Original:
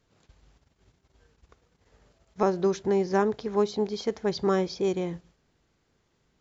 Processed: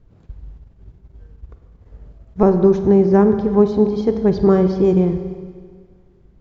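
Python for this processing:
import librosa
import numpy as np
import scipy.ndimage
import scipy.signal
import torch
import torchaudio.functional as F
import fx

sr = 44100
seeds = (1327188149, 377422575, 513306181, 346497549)

y = fx.tilt_eq(x, sr, slope=-4.5)
y = fx.rev_schroeder(y, sr, rt60_s=1.8, comb_ms=33, drr_db=8.0)
y = F.gain(torch.from_numpy(y), 4.5).numpy()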